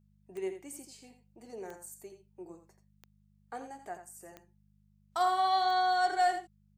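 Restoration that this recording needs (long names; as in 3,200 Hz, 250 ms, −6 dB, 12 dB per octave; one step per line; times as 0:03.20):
click removal
hum removal 50.6 Hz, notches 4
echo removal 84 ms −9.5 dB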